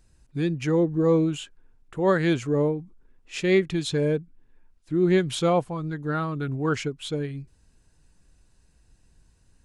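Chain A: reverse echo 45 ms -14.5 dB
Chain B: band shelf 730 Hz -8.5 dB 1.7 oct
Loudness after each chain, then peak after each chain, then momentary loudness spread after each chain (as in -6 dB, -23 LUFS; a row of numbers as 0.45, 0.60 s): -25.0, -27.0 LUFS; -10.5, -11.0 dBFS; 13, 12 LU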